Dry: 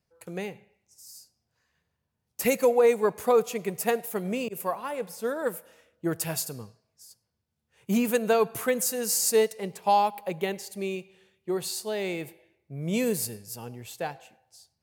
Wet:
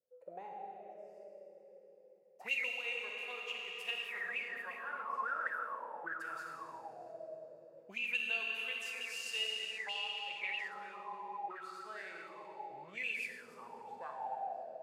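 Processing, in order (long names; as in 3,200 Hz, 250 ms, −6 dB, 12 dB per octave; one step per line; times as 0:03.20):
comb and all-pass reverb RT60 4.3 s, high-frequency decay 0.9×, pre-delay 0 ms, DRR −2.5 dB
envelope filter 500–2,800 Hz, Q 15, up, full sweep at −19 dBFS
level +6 dB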